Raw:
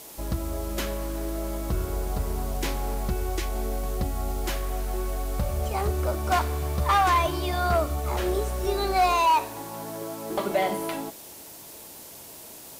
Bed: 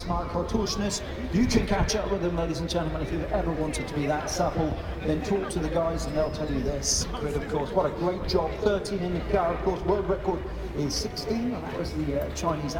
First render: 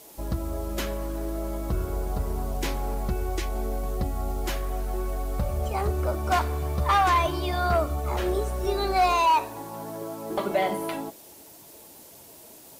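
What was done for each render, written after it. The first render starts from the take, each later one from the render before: noise reduction 6 dB, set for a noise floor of -44 dBFS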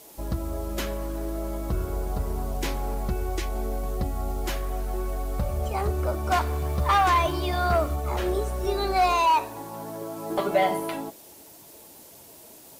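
6.47–7.96 s: companding laws mixed up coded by mu; 10.15–10.80 s: doubling 12 ms -4 dB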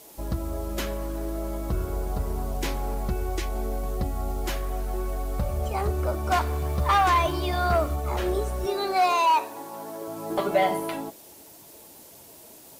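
8.66–10.08 s: high-pass 250 Hz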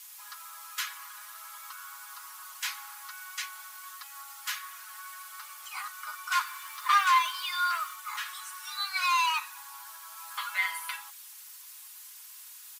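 steep high-pass 1.1 kHz 48 dB/octave; comb 4.8 ms, depth 69%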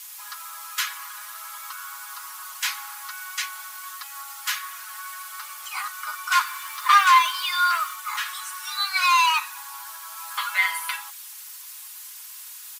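trim +7.5 dB

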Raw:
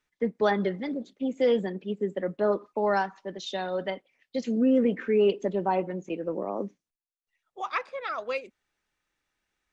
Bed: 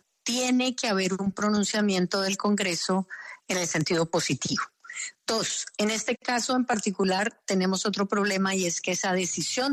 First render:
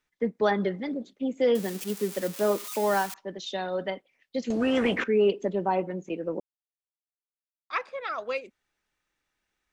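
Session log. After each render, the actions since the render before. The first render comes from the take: 1.55–3.14 s: zero-crossing glitches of -25 dBFS; 4.50–5.04 s: spectrum-flattening compressor 2:1; 6.40–7.70 s: mute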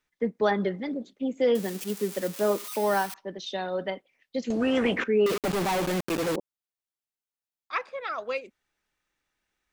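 2.67–3.89 s: band-stop 7 kHz, Q 6.5; 5.26–6.36 s: companded quantiser 2-bit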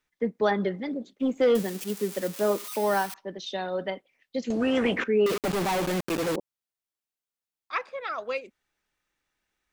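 1.15–1.63 s: waveshaping leveller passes 1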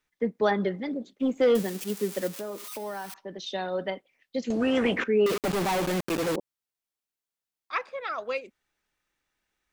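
2.27–3.40 s: compression, threshold -32 dBFS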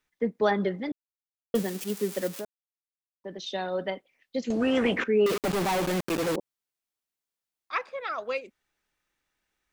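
0.92–1.54 s: mute; 2.45–3.24 s: mute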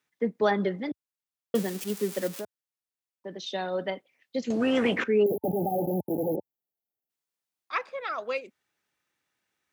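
5.23–7.10 s: spectral selection erased 890–11000 Hz; high-pass 85 Hz 24 dB/octave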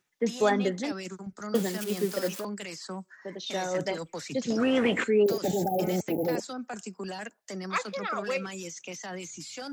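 add bed -12.5 dB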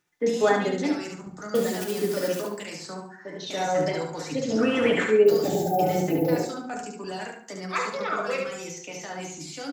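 feedback delay 71 ms, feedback 28%, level -4.5 dB; FDN reverb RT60 0.62 s, low-frequency decay 1.1×, high-frequency decay 0.3×, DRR 1 dB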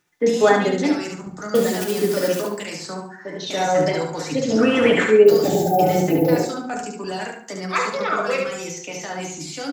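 trim +6 dB

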